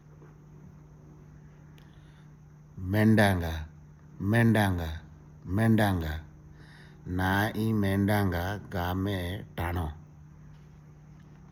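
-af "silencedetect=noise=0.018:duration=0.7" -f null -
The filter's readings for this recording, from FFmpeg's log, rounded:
silence_start: 0.00
silence_end: 2.78 | silence_duration: 2.78
silence_start: 6.19
silence_end: 7.07 | silence_duration: 0.88
silence_start: 9.91
silence_end: 11.52 | silence_duration: 1.61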